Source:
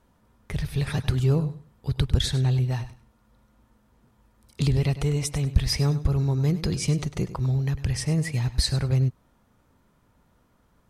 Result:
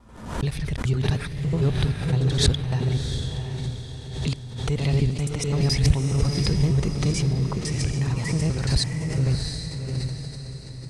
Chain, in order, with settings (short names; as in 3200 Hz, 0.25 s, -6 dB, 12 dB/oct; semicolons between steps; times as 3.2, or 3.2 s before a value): slices in reverse order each 85 ms, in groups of 5; LPF 10000 Hz 24 dB/oct; diffused feedback echo 0.698 s, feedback 44%, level -4.5 dB; backwards sustainer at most 74 dB/s